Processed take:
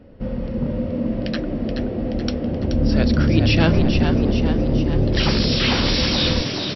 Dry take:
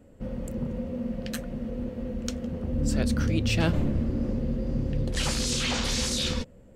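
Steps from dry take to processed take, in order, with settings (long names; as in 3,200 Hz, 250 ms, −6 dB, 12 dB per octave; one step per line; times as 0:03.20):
linear-phase brick-wall low-pass 5,700 Hz
echo with shifted repeats 427 ms, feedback 56%, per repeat +67 Hz, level −6.5 dB
level +8 dB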